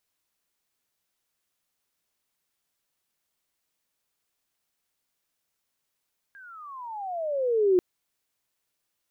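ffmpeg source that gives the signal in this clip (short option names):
-f lavfi -i "aevalsrc='pow(10,(-16+29*(t/1.44-1))/20)*sin(2*PI*1630*1.44/(-26.5*log(2)/12)*(exp(-26.5*log(2)/12*t/1.44)-1))':d=1.44:s=44100"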